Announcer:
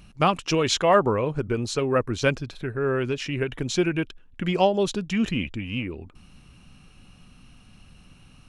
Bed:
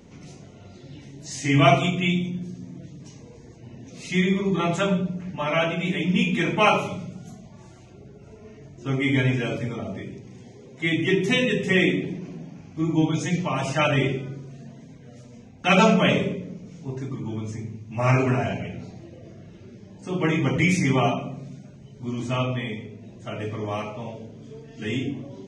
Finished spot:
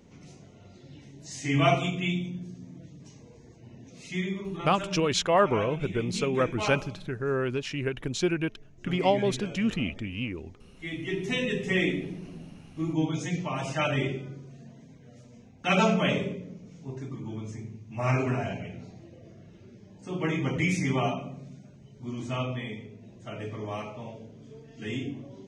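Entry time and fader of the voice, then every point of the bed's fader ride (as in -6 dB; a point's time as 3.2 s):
4.45 s, -3.5 dB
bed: 3.83 s -6 dB
4.67 s -13.5 dB
10.84 s -13.5 dB
11.51 s -6 dB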